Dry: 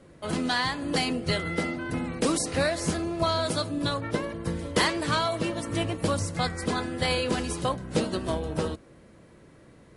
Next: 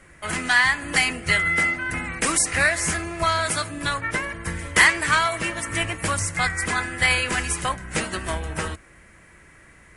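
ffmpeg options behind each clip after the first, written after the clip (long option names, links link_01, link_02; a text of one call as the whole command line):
ffmpeg -i in.wav -af "equalizer=frequency=125:width_type=o:width=1:gain=-9,equalizer=frequency=250:width_type=o:width=1:gain=-10,equalizer=frequency=500:width_type=o:width=1:gain=-11,equalizer=frequency=1000:width_type=o:width=1:gain=-3,equalizer=frequency=2000:width_type=o:width=1:gain=9,equalizer=frequency=4000:width_type=o:width=1:gain=-10,equalizer=frequency=8000:width_type=o:width=1:gain=4,volume=8.5dB" out.wav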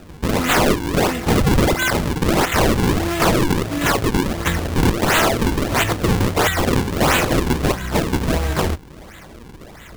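ffmpeg -i in.wav -filter_complex "[0:a]asplit=2[link_01][link_02];[link_02]acompressor=threshold=-27dB:ratio=16,volume=2dB[link_03];[link_01][link_03]amix=inputs=2:normalize=0,acrusher=samples=40:mix=1:aa=0.000001:lfo=1:lforange=64:lforate=1.5,aeval=exprs='(mod(4.73*val(0)+1,2)-1)/4.73':channel_layout=same,volume=4dB" out.wav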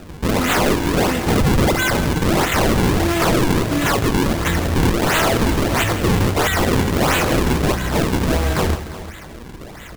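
ffmpeg -i in.wav -af "alimiter=limit=-15dB:level=0:latency=1:release=10,aecho=1:1:165|352:0.224|0.178,volume=3.5dB" out.wav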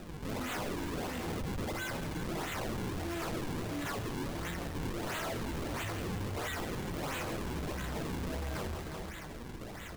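ffmpeg -i in.wav -af "alimiter=limit=-17dB:level=0:latency=1,asoftclip=type=tanh:threshold=-27dB,flanger=delay=5.3:depth=8.2:regen=-54:speed=0.44:shape=triangular,volume=-3.5dB" out.wav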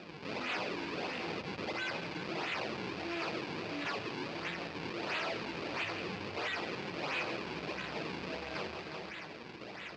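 ffmpeg -i in.wav -af "highpass=210,equalizer=frequency=250:width_type=q:width=4:gain=-5,equalizer=frequency=2500:width_type=q:width=4:gain=9,equalizer=frequency=4700:width_type=q:width=4:gain=7,lowpass=frequency=5000:width=0.5412,lowpass=frequency=5000:width=1.3066" out.wav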